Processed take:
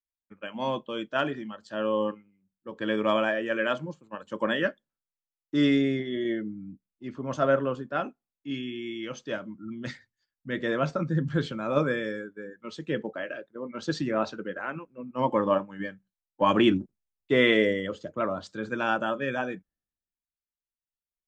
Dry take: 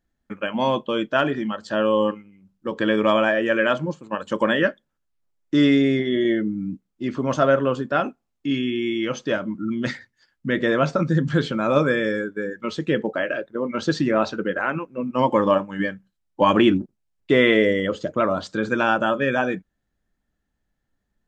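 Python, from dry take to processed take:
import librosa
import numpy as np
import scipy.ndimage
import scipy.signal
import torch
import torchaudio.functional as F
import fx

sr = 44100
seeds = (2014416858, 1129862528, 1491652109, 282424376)

y = fx.band_widen(x, sr, depth_pct=70)
y = y * librosa.db_to_amplitude(-7.5)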